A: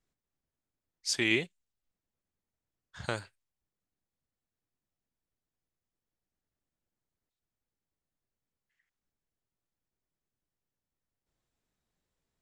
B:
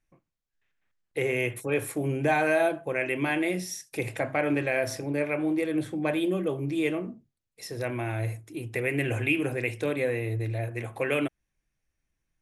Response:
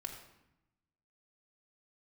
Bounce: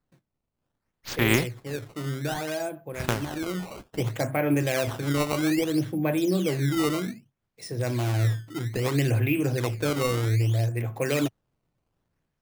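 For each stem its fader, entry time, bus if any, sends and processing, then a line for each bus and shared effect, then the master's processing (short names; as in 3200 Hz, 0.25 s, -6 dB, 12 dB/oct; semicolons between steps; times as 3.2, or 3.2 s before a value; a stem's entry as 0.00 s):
+2.5 dB, 0.00 s, no send, spectral contrast lowered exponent 0.5; LPF 1800 Hz 12 dB/oct
-4.0 dB, 0.00 s, no send, elliptic band-pass 110–6400 Hz; de-esser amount 90%; high shelf 2900 Hz -7.5 dB; auto duck -8 dB, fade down 1.70 s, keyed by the first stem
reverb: off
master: tone controls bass +8 dB, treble +10 dB; AGC gain up to 5 dB; decimation with a swept rate 15×, swing 160% 0.62 Hz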